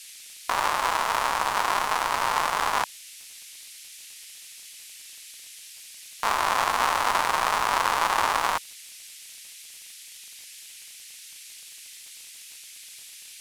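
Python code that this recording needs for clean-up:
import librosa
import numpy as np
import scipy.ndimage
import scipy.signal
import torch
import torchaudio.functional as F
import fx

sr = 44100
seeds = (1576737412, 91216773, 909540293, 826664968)

y = fx.fix_declick_ar(x, sr, threshold=6.5)
y = fx.noise_reduce(y, sr, print_start_s=9.62, print_end_s=10.12, reduce_db=28.0)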